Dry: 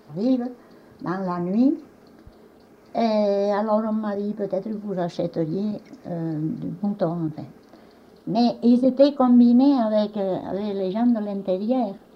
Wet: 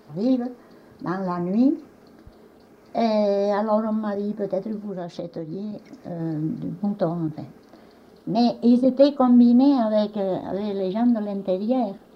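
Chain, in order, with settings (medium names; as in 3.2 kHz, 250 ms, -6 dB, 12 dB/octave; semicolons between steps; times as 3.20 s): 4.75–6.20 s: compression 6:1, threshold -28 dBFS, peak gain reduction 9.5 dB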